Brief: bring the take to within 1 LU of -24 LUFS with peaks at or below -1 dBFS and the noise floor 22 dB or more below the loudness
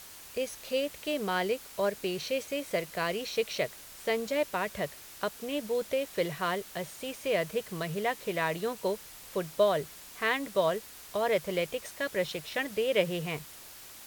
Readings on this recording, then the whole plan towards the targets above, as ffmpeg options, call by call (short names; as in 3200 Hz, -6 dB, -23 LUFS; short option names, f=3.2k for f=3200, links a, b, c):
noise floor -49 dBFS; noise floor target -54 dBFS; loudness -32.0 LUFS; peak -13.0 dBFS; loudness target -24.0 LUFS
-> -af "afftdn=nr=6:nf=-49"
-af "volume=8dB"